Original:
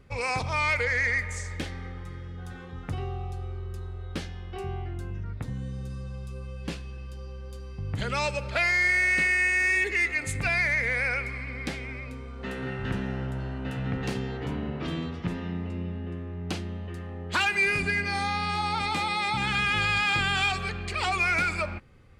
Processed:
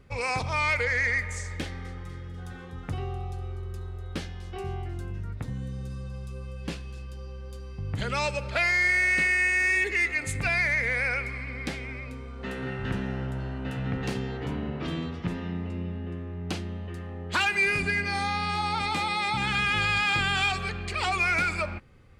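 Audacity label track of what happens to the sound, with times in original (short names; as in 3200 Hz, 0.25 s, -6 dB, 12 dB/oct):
1.600000	7.050000	thin delay 0.246 s, feedback 57%, high-pass 4500 Hz, level -12 dB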